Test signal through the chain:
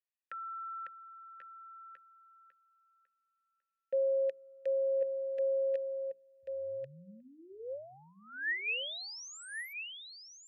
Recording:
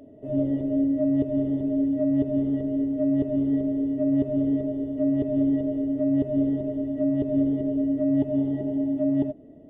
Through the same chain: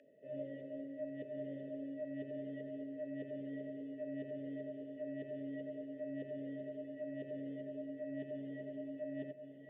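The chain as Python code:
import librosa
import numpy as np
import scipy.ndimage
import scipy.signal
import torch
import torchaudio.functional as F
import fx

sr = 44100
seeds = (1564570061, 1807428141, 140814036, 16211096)

p1 = fx.vowel_filter(x, sr, vowel='e')
p2 = fx.band_shelf(p1, sr, hz=540.0, db=-12.5, octaves=2.5)
p3 = fx.rider(p2, sr, range_db=4, speed_s=0.5)
p4 = p2 + F.gain(torch.from_numpy(p3), 1.0).numpy()
p5 = scipy.signal.sosfilt(scipy.signal.butter(4, 130.0, 'highpass', fs=sr, output='sos'), p4)
p6 = fx.hum_notches(p5, sr, base_hz=60, count=7)
y = p6 + fx.echo_single(p6, sr, ms=1087, db=-7.5, dry=0)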